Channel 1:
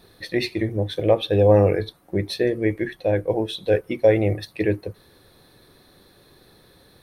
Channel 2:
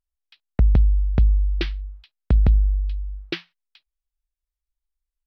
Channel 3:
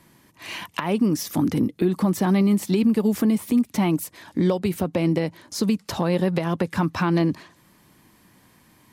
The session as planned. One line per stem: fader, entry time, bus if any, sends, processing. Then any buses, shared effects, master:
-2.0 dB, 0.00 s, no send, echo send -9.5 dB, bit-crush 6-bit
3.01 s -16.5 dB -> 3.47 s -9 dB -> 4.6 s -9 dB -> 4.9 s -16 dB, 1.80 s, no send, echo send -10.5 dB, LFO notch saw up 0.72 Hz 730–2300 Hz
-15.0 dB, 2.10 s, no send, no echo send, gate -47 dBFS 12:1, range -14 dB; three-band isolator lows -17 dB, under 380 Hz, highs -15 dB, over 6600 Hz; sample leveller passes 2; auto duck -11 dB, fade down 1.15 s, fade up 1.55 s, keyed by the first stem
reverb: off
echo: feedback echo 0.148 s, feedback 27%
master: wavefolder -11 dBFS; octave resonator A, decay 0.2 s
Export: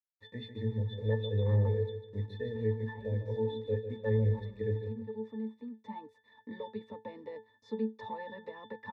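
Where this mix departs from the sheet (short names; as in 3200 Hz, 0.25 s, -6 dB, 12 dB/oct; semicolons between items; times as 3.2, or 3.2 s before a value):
stem 2 -16.5 dB -> -27.5 dB; stem 3 -15.0 dB -> -4.0 dB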